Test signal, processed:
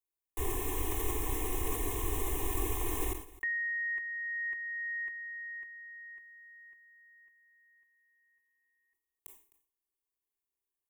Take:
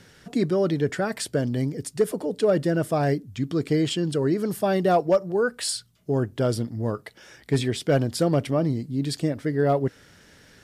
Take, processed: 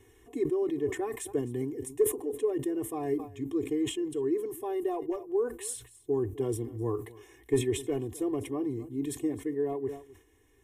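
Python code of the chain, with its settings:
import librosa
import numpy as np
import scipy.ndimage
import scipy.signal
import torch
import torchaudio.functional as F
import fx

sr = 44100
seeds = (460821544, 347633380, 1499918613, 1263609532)

y = fx.peak_eq(x, sr, hz=2600.0, db=-9.0, octaves=2.0)
y = y + 0.86 * np.pad(y, (int(2.8 * sr / 1000.0), 0))[:len(y)]
y = fx.rider(y, sr, range_db=5, speed_s=0.5)
y = fx.fixed_phaser(y, sr, hz=960.0, stages=8)
y = y + 10.0 ** (-20.5 / 20.0) * np.pad(y, (int(259 * sr / 1000.0), 0))[:len(y)]
y = fx.sustainer(y, sr, db_per_s=130.0)
y = y * librosa.db_to_amplitude(-7.0)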